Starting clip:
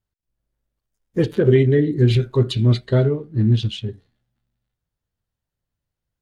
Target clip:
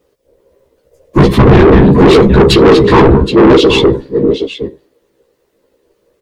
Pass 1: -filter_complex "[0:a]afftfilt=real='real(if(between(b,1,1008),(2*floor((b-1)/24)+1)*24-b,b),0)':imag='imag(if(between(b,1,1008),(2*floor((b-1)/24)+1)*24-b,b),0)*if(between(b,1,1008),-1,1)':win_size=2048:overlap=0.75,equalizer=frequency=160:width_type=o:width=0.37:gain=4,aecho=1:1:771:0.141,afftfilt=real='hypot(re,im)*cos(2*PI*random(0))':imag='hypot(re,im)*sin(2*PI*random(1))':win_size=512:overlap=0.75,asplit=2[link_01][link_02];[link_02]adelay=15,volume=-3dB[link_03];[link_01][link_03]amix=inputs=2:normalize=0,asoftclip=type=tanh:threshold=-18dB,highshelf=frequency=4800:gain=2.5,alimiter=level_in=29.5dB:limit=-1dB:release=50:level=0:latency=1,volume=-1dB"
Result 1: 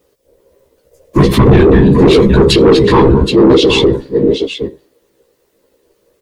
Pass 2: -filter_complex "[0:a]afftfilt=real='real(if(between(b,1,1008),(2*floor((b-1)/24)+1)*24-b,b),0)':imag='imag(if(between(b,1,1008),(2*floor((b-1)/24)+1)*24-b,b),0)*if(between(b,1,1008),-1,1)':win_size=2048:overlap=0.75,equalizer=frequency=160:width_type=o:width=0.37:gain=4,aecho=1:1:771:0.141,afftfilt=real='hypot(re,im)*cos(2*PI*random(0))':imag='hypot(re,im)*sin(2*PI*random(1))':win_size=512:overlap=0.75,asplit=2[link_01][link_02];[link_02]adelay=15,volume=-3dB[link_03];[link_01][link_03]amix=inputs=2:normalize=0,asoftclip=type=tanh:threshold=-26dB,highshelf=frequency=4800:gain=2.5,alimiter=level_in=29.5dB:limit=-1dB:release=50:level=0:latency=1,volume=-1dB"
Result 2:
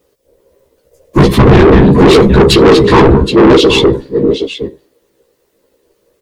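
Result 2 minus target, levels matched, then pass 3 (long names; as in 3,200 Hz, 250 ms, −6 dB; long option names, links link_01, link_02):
8,000 Hz band +4.0 dB
-filter_complex "[0:a]afftfilt=real='real(if(between(b,1,1008),(2*floor((b-1)/24)+1)*24-b,b),0)':imag='imag(if(between(b,1,1008),(2*floor((b-1)/24)+1)*24-b,b),0)*if(between(b,1,1008),-1,1)':win_size=2048:overlap=0.75,equalizer=frequency=160:width_type=o:width=0.37:gain=4,aecho=1:1:771:0.141,afftfilt=real='hypot(re,im)*cos(2*PI*random(0))':imag='hypot(re,im)*sin(2*PI*random(1))':win_size=512:overlap=0.75,asplit=2[link_01][link_02];[link_02]adelay=15,volume=-3dB[link_03];[link_01][link_03]amix=inputs=2:normalize=0,asoftclip=type=tanh:threshold=-26dB,highshelf=frequency=4800:gain=-4.5,alimiter=level_in=29.5dB:limit=-1dB:release=50:level=0:latency=1,volume=-1dB"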